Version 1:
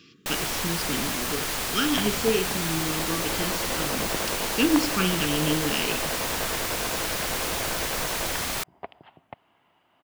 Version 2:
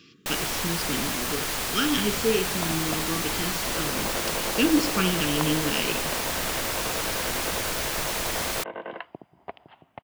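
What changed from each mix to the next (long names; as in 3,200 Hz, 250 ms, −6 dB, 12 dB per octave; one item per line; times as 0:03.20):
second sound: entry +0.65 s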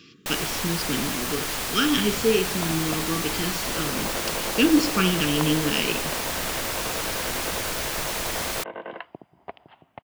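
speech +3.0 dB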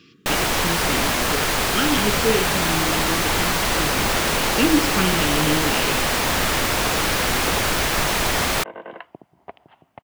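first sound +10.5 dB
master: add high-shelf EQ 4,300 Hz −7 dB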